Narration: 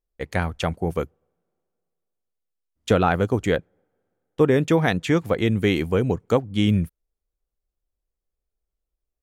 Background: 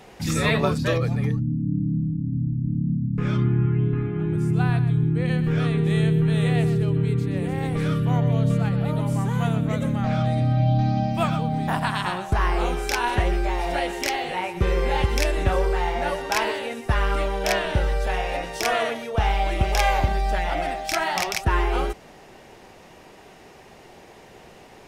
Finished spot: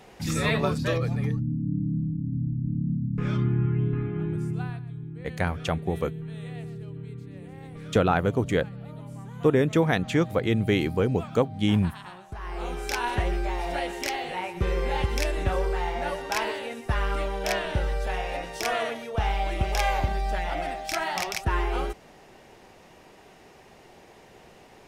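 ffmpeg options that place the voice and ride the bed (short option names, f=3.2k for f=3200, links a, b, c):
-filter_complex "[0:a]adelay=5050,volume=-3dB[a];[1:a]volume=8.5dB,afade=t=out:st=4.19:d=0.62:silence=0.223872,afade=t=in:st=12.41:d=0.51:silence=0.251189[b];[a][b]amix=inputs=2:normalize=0"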